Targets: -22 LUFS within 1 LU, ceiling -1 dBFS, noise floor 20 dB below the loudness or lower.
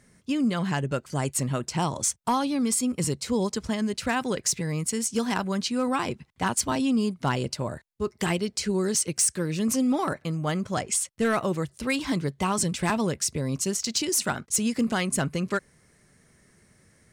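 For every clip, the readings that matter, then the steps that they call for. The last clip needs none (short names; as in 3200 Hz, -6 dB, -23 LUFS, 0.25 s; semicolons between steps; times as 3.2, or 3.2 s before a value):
clipped 0.2%; flat tops at -16.5 dBFS; loudness -26.5 LUFS; peak -16.5 dBFS; loudness target -22.0 LUFS
-> clip repair -16.5 dBFS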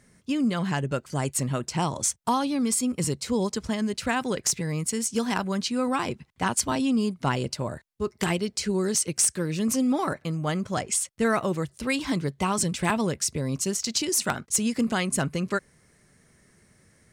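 clipped 0.0%; loudness -26.5 LUFS; peak -7.5 dBFS; loudness target -22.0 LUFS
-> gain +4.5 dB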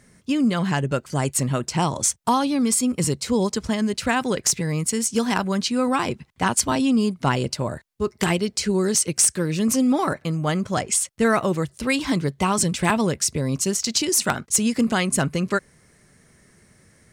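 loudness -22.0 LUFS; peak -3.0 dBFS; noise floor -57 dBFS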